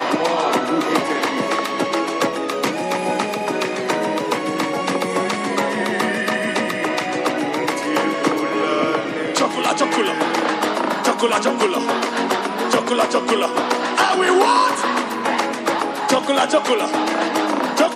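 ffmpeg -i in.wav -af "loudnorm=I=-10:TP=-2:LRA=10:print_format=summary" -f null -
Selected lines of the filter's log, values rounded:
Input Integrated:    -19.2 LUFS
Input True Peak:      -2.3 dBTP
Input LRA:             3.3 LU
Input Threshold:     -29.2 LUFS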